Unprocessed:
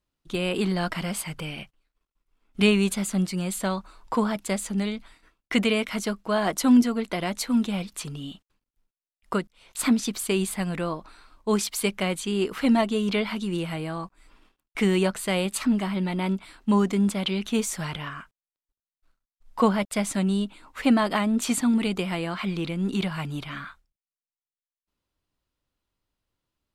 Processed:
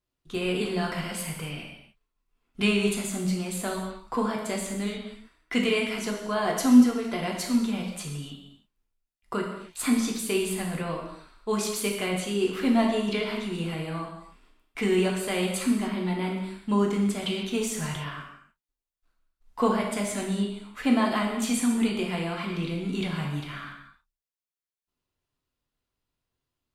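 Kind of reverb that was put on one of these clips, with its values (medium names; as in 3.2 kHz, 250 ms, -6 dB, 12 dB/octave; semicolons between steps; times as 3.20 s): gated-style reverb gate 320 ms falling, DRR -1 dB; trim -5 dB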